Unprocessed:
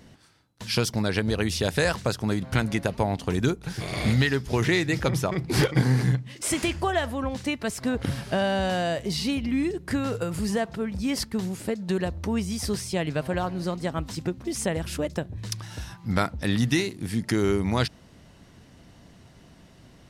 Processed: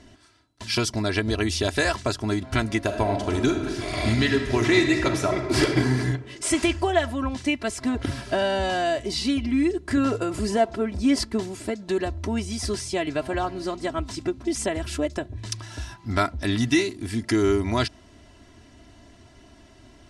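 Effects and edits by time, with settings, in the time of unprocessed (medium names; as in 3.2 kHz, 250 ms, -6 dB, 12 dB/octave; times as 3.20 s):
2.83–5.67 s: reverb throw, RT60 1.7 s, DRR 4.5 dB
9.97–11.43 s: peaking EQ 450 Hz +5.5 dB 2.2 oct
whole clip: low-pass 10 kHz 24 dB/octave; comb 3 ms, depth 77%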